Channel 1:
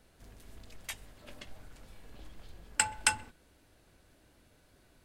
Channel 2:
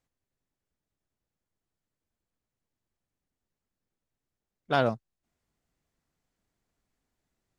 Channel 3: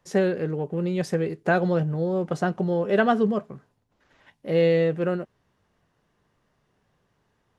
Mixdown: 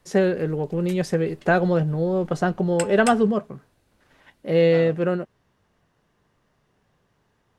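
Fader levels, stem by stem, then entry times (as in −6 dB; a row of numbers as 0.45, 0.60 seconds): −3.0, −13.0, +2.5 decibels; 0.00, 0.00, 0.00 seconds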